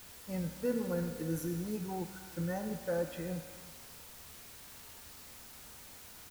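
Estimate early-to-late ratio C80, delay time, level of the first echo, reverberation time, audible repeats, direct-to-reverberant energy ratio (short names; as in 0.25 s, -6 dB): 7.0 dB, 0.311 s, -20.0 dB, 1.7 s, 1, 5.5 dB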